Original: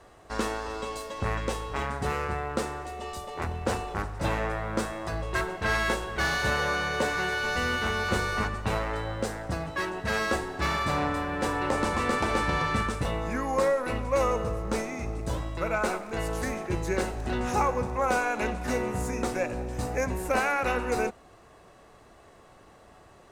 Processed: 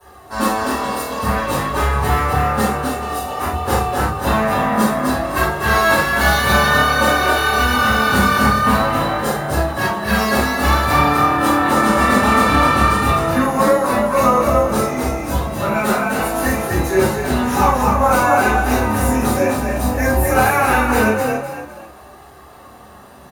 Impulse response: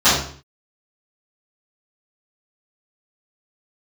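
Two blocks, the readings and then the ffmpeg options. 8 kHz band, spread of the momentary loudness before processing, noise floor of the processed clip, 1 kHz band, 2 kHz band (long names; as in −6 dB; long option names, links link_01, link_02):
+13.0 dB, 7 LU, −41 dBFS, +14.5 dB, +12.0 dB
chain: -filter_complex "[0:a]aexciter=amount=9.6:drive=6.6:freq=9100,flanger=delay=2.4:depth=2.7:regen=37:speed=0.54:shape=sinusoidal,asplit=5[link_01][link_02][link_03][link_04][link_05];[link_02]adelay=254,afreqshift=38,volume=-4dB[link_06];[link_03]adelay=508,afreqshift=76,volume=-13.6dB[link_07];[link_04]adelay=762,afreqshift=114,volume=-23.3dB[link_08];[link_05]adelay=1016,afreqshift=152,volume=-32.9dB[link_09];[link_01][link_06][link_07][link_08][link_09]amix=inputs=5:normalize=0[link_10];[1:a]atrim=start_sample=2205,atrim=end_sample=4410[link_11];[link_10][link_11]afir=irnorm=-1:irlink=0,volume=-9.5dB"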